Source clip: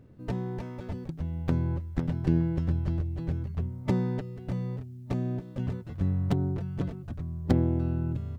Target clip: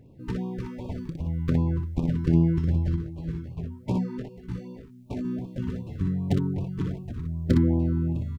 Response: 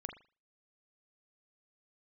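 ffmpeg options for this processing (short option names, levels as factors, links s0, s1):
-filter_complex "[0:a]aecho=1:1:29|60:0.224|0.596,asettb=1/sr,asplit=3[s0][s1][s2];[s0]atrim=end=2.964[s3];[s1]atrim=start=2.96:end=5.25,asetpts=PTS-STARTPTS,afade=t=in:d=0.004:c=qsin,afade=t=out:st=2.286:d=0.004:c=qsin,flanger=delay=17:depth=2.5:speed=2[s4];[s2]atrim=start=5.246[s5];[s3][s4]acrossfade=d=0.004:c1=hsin:c2=qsin[s6];[s6][s5]acrossfade=d=0.004:c1=qsin:c2=hsin,afftfilt=real='re*(1-between(b*sr/1024,600*pow(1700/600,0.5+0.5*sin(2*PI*2.6*pts/sr))/1.41,600*pow(1700/600,0.5+0.5*sin(2*PI*2.6*pts/sr))*1.41))':imag='im*(1-between(b*sr/1024,600*pow(1700/600,0.5+0.5*sin(2*PI*2.6*pts/sr))/1.41,600*pow(1700/600,0.5+0.5*sin(2*PI*2.6*pts/sr))*1.41))':win_size=1024:overlap=0.75,volume=1.19"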